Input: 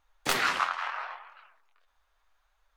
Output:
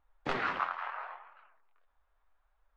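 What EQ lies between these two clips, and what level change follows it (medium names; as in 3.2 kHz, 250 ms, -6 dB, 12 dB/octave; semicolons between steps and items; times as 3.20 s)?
tape spacing loss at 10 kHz 39 dB; 0.0 dB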